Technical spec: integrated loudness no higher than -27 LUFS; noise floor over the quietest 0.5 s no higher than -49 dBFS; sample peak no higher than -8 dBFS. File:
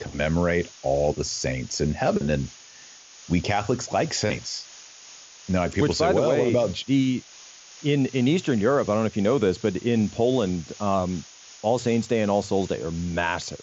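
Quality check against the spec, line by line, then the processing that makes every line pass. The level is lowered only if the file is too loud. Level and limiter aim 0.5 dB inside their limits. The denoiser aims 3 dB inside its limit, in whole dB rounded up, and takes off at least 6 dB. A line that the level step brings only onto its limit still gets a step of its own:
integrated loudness -24.5 LUFS: fail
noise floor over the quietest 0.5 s -47 dBFS: fail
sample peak -10.5 dBFS: pass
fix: trim -3 dB

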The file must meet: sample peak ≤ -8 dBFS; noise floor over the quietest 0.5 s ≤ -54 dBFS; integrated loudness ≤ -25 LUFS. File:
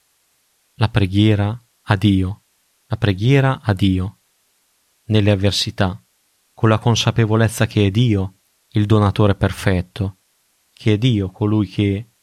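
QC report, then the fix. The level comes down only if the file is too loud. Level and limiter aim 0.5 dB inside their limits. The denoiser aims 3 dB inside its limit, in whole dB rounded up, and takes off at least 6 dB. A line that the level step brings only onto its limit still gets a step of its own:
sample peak -1.5 dBFS: fail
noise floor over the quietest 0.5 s -63 dBFS: pass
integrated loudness -18.0 LUFS: fail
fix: trim -7.5 dB

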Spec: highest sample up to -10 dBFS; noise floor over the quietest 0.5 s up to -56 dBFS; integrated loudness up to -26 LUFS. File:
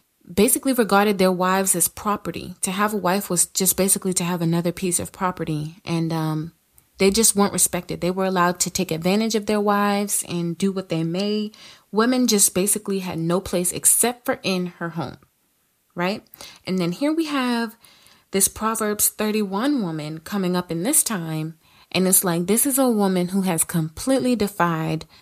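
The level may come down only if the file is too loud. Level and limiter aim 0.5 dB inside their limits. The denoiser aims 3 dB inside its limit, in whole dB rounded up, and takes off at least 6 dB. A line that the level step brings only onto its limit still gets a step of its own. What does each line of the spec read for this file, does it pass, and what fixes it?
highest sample -4.5 dBFS: fail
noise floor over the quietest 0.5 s -66 dBFS: pass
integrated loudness -20.5 LUFS: fail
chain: trim -6 dB

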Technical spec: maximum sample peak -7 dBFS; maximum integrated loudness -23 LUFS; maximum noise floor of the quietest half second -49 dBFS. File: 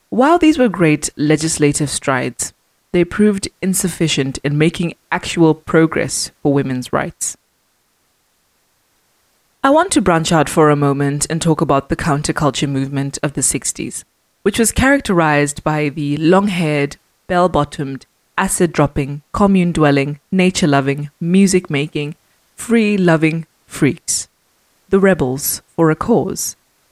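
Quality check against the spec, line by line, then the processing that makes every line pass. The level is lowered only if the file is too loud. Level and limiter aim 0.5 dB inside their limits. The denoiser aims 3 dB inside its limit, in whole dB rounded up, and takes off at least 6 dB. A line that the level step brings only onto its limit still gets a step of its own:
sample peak -2.0 dBFS: fail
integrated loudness -15.5 LUFS: fail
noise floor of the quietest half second -62 dBFS: pass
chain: trim -8 dB

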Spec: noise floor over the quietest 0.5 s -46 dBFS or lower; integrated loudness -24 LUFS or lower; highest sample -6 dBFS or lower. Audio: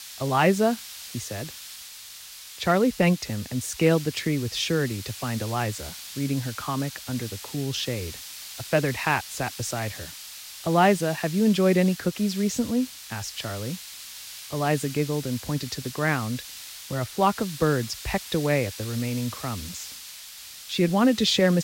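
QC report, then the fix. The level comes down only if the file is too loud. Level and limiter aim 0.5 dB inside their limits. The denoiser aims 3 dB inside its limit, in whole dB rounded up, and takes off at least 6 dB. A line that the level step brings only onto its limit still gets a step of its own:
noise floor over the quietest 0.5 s -43 dBFS: fail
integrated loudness -26.0 LUFS: pass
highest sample -9.0 dBFS: pass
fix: noise reduction 6 dB, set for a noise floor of -43 dBFS

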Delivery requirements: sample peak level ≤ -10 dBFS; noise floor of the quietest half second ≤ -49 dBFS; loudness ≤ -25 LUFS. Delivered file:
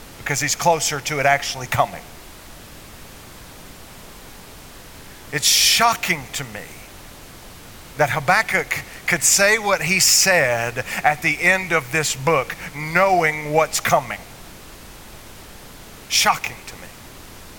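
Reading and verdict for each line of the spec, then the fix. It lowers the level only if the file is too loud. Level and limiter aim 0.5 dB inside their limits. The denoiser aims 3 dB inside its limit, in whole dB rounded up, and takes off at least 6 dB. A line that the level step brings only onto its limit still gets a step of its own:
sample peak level -3.5 dBFS: fail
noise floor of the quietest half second -40 dBFS: fail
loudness -17.5 LUFS: fail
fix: noise reduction 6 dB, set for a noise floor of -40 dBFS; trim -8 dB

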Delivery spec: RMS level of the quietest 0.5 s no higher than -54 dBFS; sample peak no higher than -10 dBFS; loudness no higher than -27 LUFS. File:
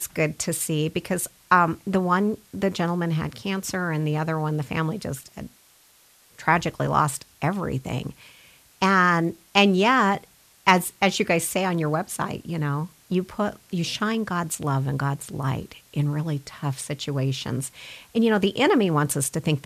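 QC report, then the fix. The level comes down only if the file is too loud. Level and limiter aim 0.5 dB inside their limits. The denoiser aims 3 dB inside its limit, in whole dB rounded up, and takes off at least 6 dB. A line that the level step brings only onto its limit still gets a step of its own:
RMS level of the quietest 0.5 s -57 dBFS: pass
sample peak -2.0 dBFS: fail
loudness -24.0 LUFS: fail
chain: trim -3.5 dB; peak limiter -10.5 dBFS

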